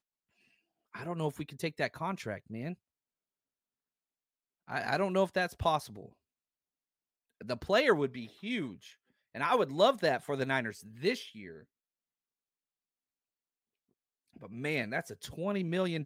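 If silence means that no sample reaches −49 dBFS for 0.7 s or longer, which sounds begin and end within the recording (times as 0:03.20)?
0:00.95–0:02.74
0:04.68–0:06.09
0:07.41–0:11.63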